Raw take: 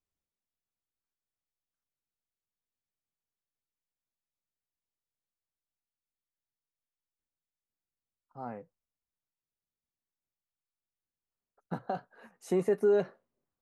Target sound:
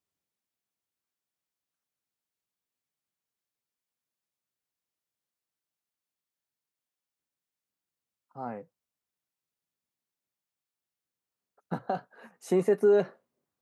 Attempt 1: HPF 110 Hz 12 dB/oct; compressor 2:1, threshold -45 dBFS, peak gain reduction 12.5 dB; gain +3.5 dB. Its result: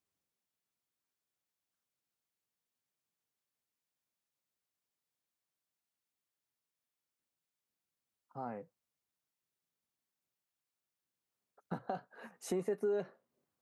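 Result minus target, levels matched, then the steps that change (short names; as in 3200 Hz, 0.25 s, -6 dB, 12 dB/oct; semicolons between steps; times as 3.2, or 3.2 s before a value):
compressor: peak gain reduction +12.5 dB
remove: compressor 2:1, threshold -45 dBFS, peak gain reduction 12.5 dB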